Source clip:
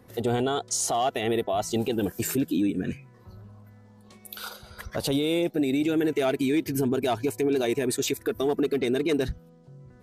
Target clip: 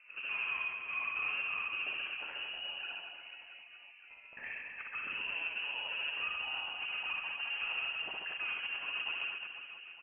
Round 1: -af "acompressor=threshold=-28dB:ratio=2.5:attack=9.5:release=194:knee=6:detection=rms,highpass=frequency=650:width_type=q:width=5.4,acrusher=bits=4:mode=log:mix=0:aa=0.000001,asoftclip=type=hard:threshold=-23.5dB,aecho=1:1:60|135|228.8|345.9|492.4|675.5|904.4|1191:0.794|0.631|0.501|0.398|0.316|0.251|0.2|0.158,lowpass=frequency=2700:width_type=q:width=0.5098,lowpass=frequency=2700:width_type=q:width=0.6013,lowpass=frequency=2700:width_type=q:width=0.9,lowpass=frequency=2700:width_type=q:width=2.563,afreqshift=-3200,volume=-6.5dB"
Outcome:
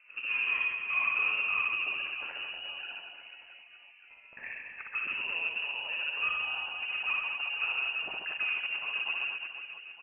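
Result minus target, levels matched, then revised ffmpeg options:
hard clipping: distortion −4 dB
-af "acompressor=threshold=-28dB:ratio=2.5:attack=9.5:release=194:knee=6:detection=rms,highpass=frequency=650:width_type=q:width=5.4,acrusher=bits=4:mode=log:mix=0:aa=0.000001,asoftclip=type=hard:threshold=-32dB,aecho=1:1:60|135|228.8|345.9|492.4|675.5|904.4|1191:0.794|0.631|0.501|0.398|0.316|0.251|0.2|0.158,lowpass=frequency=2700:width_type=q:width=0.5098,lowpass=frequency=2700:width_type=q:width=0.6013,lowpass=frequency=2700:width_type=q:width=0.9,lowpass=frequency=2700:width_type=q:width=2.563,afreqshift=-3200,volume=-6.5dB"

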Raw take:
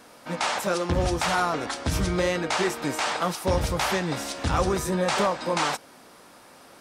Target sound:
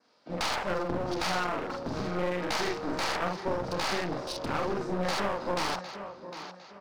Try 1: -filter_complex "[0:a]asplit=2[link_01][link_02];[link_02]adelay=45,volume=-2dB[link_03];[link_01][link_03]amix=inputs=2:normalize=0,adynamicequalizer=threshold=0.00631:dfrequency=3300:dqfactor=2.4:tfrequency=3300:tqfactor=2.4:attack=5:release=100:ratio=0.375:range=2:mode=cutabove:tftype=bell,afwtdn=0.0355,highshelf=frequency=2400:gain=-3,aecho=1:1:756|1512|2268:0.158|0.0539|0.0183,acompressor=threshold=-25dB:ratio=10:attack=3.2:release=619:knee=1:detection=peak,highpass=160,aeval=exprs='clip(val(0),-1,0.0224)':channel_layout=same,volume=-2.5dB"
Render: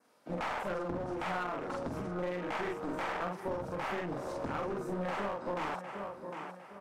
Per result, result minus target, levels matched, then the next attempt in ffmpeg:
4,000 Hz band −9.0 dB; downward compressor: peak gain reduction +6.5 dB
-filter_complex "[0:a]asplit=2[link_01][link_02];[link_02]adelay=45,volume=-2dB[link_03];[link_01][link_03]amix=inputs=2:normalize=0,adynamicequalizer=threshold=0.00631:dfrequency=3300:dqfactor=2.4:tfrequency=3300:tqfactor=2.4:attack=5:release=100:ratio=0.375:range=2:mode=cutabove:tftype=bell,lowpass=frequency=4700:width_type=q:width=3,afwtdn=0.0355,highshelf=frequency=2400:gain=-3,aecho=1:1:756|1512|2268:0.158|0.0539|0.0183,acompressor=threshold=-25dB:ratio=10:attack=3.2:release=619:knee=1:detection=peak,highpass=160,aeval=exprs='clip(val(0),-1,0.0224)':channel_layout=same,volume=-2.5dB"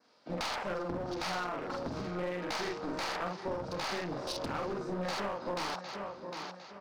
downward compressor: peak gain reduction +7 dB
-filter_complex "[0:a]asplit=2[link_01][link_02];[link_02]adelay=45,volume=-2dB[link_03];[link_01][link_03]amix=inputs=2:normalize=0,adynamicequalizer=threshold=0.00631:dfrequency=3300:dqfactor=2.4:tfrequency=3300:tqfactor=2.4:attack=5:release=100:ratio=0.375:range=2:mode=cutabove:tftype=bell,lowpass=frequency=4700:width_type=q:width=3,afwtdn=0.0355,highshelf=frequency=2400:gain=-3,aecho=1:1:756|1512|2268:0.158|0.0539|0.0183,acompressor=threshold=-17.5dB:ratio=10:attack=3.2:release=619:knee=1:detection=peak,highpass=160,aeval=exprs='clip(val(0),-1,0.0224)':channel_layout=same,volume=-2.5dB"

